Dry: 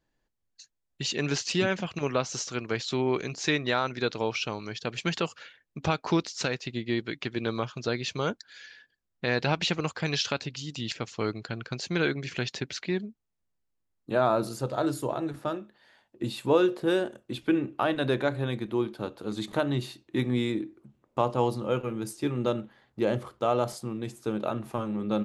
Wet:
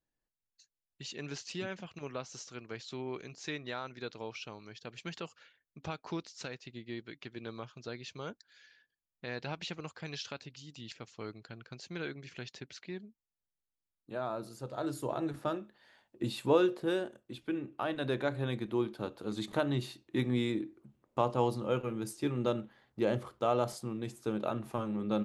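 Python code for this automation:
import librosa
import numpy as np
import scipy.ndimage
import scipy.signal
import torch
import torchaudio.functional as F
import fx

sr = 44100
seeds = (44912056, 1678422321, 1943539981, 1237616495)

y = fx.gain(x, sr, db=fx.line((14.51, -13.0), (15.24, -3.0), (16.45, -3.0), (17.46, -11.0), (18.52, -4.0)))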